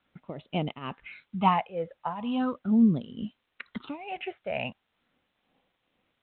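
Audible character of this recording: tremolo triangle 2.2 Hz, depth 85%; phasing stages 6, 0.4 Hz, lowest notch 280–1700 Hz; a quantiser's noise floor 12-bit, dither triangular; G.726

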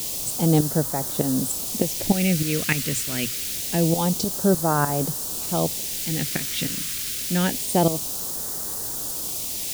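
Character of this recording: tremolo saw up 3.3 Hz, depth 75%; a quantiser's noise floor 6-bit, dither triangular; phasing stages 2, 0.26 Hz, lowest notch 780–2300 Hz

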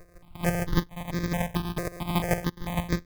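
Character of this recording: a buzz of ramps at a fixed pitch in blocks of 256 samples; chopped level 6.5 Hz, depth 60%, duty 20%; aliases and images of a low sample rate 1400 Hz, jitter 0%; notches that jump at a steady rate 4.5 Hz 870–2900 Hz

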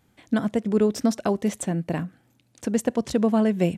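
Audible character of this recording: noise floor -65 dBFS; spectral tilt -6.5 dB/oct

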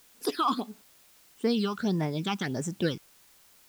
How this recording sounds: phasing stages 8, 1.6 Hz, lowest notch 540–4200 Hz; a quantiser's noise floor 10-bit, dither triangular

